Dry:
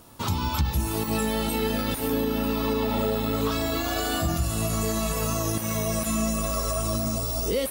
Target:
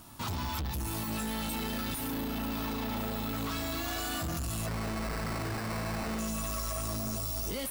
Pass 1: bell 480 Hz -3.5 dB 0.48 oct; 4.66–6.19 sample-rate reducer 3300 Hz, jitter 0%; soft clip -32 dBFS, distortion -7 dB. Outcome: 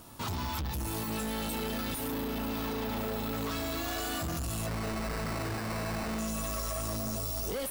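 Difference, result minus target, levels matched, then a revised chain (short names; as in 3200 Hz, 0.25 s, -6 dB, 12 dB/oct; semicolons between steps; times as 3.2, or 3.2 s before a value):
500 Hz band +3.0 dB
bell 480 Hz -13 dB 0.48 oct; 4.66–6.19 sample-rate reducer 3300 Hz, jitter 0%; soft clip -32 dBFS, distortion -8 dB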